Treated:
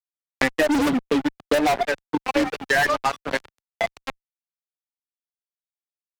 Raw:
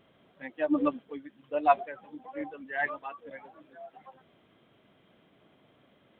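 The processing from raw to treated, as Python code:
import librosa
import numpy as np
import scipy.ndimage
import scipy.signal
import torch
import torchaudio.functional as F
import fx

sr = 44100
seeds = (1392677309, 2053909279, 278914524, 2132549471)

y = fx.low_shelf(x, sr, hz=350.0, db=11.5, at=(0.75, 1.59))
y = fx.fuzz(y, sr, gain_db=37.0, gate_db=-42.0)
y = fx.band_squash(y, sr, depth_pct=100)
y = y * librosa.db_to_amplitude(-2.5)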